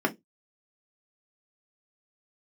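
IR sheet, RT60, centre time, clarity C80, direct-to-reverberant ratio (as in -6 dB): 0.15 s, 6 ms, 31.5 dB, 0.0 dB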